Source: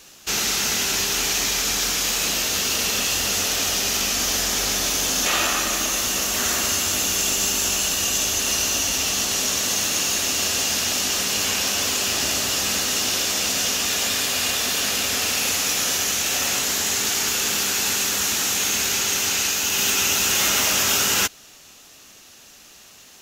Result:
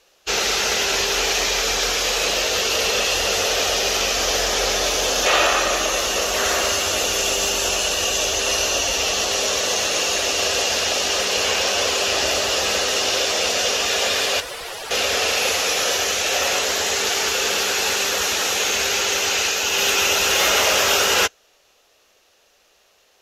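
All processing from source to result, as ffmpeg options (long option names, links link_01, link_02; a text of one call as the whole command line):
ffmpeg -i in.wav -filter_complex "[0:a]asettb=1/sr,asplit=3[link_01][link_02][link_03];[link_01]atrim=end=14.404[link_04];[link_02]atrim=start=14.4:end=14.91,asetpts=PTS-STARTPTS,afade=type=in:duration=0.004:curve=qsin,afade=type=out:start_time=0.506:duration=0.004:curve=qsin,highpass=220,lowpass=4500,aeval=exprs='(mod(16.8*val(0)+1,2)-1)/16.8':channel_layout=same[link_05];[link_03]atrim=start=14.906[link_06];[link_04][link_05]acrossfade=duration=0.004:curve1=hsin:curve2=qsin[link_07];[link_07][link_06]acrossfade=duration=0.004:curve1=qsin:curve2=hsin,lowpass=12000,afftdn=noise_reduction=14:noise_floor=-34,equalizer=frequency=125:width_type=o:width=1:gain=-9,equalizer=frequency=250:width_type=o:width=1:gain=-10,equalizer=frequency=500:width_type=o:width=1:gain=10,equalizer=frequency=8000:width_type=o:width=1:gain=-8,volume=5dB" out.wav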